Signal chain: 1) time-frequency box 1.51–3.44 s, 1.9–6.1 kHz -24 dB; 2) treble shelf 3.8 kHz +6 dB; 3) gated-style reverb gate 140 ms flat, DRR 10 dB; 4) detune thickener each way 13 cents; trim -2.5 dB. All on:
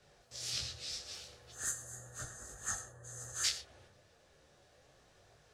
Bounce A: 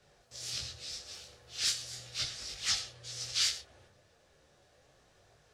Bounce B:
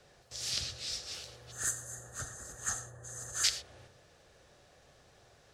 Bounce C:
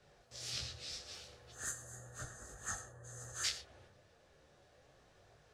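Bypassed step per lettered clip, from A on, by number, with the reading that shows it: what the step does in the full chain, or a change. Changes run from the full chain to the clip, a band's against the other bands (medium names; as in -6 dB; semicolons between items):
1, 4 kHz band +7.5 dB; 4, crest factor change +2.0 dB; 2, 8 kHz band -4.5 dB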